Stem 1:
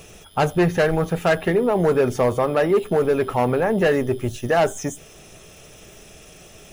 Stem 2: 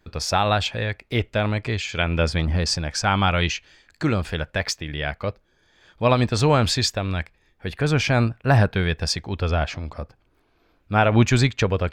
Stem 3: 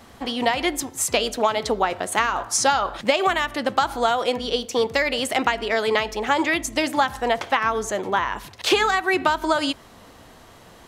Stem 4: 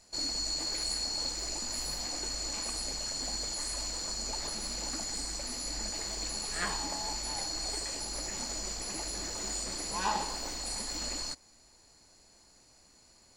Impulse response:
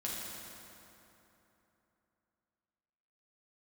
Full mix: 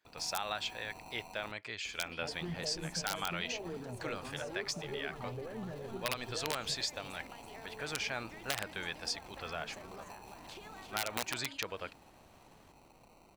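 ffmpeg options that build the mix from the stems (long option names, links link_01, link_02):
-filter_complex "[0:a]lowshelf=frequency=370:gain=11,aeval=exprs='val(0)*gte(abs(val(0)),0.0133)':channel_layout=same,asplit=2[link_01][link_02];[link_02]afreqshift=-2.2[link_03];[link_01][link_03]amix=inputs=2:normalize=1,adelay=1850,volume=-17dB,asplit=2[link_04][link_05];[link_05]volume=-17.5dB[link_06];[1:a]aeval=exprs='(mod(2.37*val(0)+1,2)-1)/2.37':channel_layout=same,highpass=frequency=1200:poles=1,volume=-10dB[link_07];[2:a]acompressor=threshold=-27dB:ratio=6,adelay=1850,volume=-15.5dB,asplit=2[link_08][link_09];[link_09]volume=-12.5dB[link_10];[3:a]highpass=frequency=530:width=0.5412,highpass=frequency=530:width=1.3066,acompressor=threshold=-47dB:ratio=4,acrusher=samples=26:mix=1:aa=0.000001,adelay=50,volume=2dB,asplit=3[link_11][link_12][link_13];[link_11]atrim=end=1.52,asetpts=PTS-STARTPTS,afade=type=out:start_time=1.516:duration=0.004:curve=hsin[link_14];[link_12]atrim=start=1.52:end=2.25,asetpts=PTS-STARTPTS,volume=0[link_15];[link_13]atrim=start=2.25,asetpts=PTS-STARTPTS,afade=type=in:duration=0.004:curve=hsin[link_16];[link_14][link_15][link_16]concat=n=3:v=0:a=1[link_17];[link_04][link_08][link_17]amix=inputs=3:normalize=0,acompressor=threshold=-59dB:ratio=1.5,volume=0dB[link_18];[link_06][link_10]amix=inputs=2:normalize=0,aecho=0:1:333:1[link_19];[link_07][link_18][link_19]amix=inputs=3:normalize=0,acompressor=threshold=-32dB:ratio=3"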